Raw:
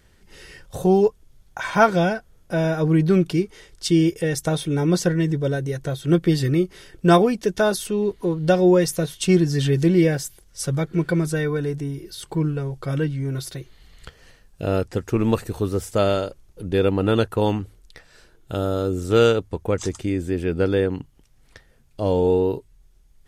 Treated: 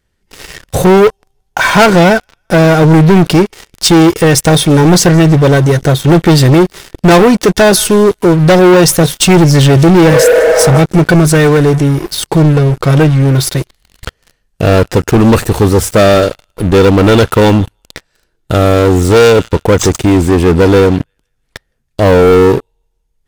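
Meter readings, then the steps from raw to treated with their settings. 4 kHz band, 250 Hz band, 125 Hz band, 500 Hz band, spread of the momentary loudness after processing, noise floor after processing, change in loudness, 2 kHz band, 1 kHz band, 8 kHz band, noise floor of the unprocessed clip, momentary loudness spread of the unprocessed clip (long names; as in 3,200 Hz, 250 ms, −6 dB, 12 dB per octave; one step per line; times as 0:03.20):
+16.5 dB, +13.0 dB, +14.5 dB, +13.0 dB, 7 LU, −63 dBFS, +13.5 dB, +15.5 dB, +14.0 dB, +18.0 dB, −56 dBFS, 12 LU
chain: delay with a high-pass on its return 163 ms, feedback 51%, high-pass 1,400 Hz, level −21.5 dB
healed spectral selection 0:10.12–0:10.76, 390–2,200 Hz both
leveller curve on the samples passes 5
level +1.5 dB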